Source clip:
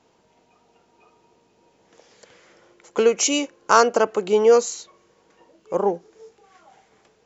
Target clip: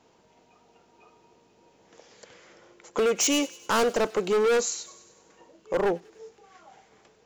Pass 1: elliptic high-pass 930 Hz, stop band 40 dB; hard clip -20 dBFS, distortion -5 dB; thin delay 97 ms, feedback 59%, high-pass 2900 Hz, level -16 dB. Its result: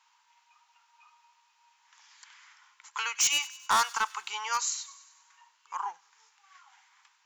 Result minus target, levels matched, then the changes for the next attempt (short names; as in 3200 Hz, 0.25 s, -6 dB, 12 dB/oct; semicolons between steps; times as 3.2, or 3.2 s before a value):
1000 Hz band +5.0 dB
remove: elliptic high-pass 930 Hz, stop band 40 dB